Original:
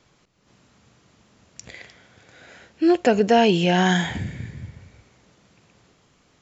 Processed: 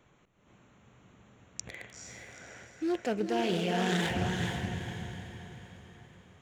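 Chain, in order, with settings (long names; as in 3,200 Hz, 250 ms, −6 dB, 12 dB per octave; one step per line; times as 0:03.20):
adaptive Wiener filter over 9 samples
high-shelf EQ 4,600 Hz +9.5 dB
reversed playback
downward compressor 5 to 1, threshold −26 dBFS, peak gain reduction 13 dB
reversed playback
feedback delay with all-pass diffusion 451 ms, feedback 44%, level −3.5 dB
highs frequency-modulated by the lows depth 0.26 ms
level −3 dB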